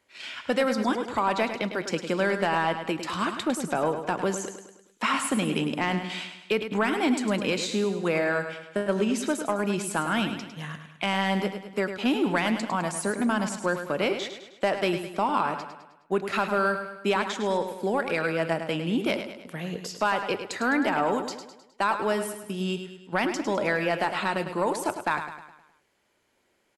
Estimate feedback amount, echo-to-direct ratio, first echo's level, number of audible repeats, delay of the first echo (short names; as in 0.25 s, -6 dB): 49%, -8.0 dB, -9.0 dB, 5, 0.104 s